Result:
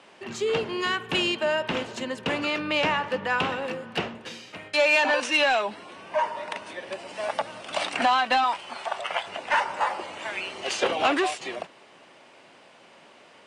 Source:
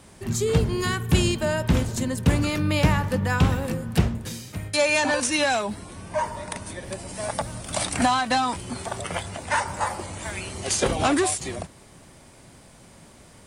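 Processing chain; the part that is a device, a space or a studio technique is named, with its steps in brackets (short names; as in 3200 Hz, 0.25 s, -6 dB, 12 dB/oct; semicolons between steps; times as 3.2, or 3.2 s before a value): intercom (BPF 430–3600 Hz; bell 2800 Hz +7 dB 0.28 oct; soft clip -14 dBFS, distortion -22 dB); 8.44–9.27 resonant low shelf 530 Hz -7.5 dB, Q 1.5; gain +2 dB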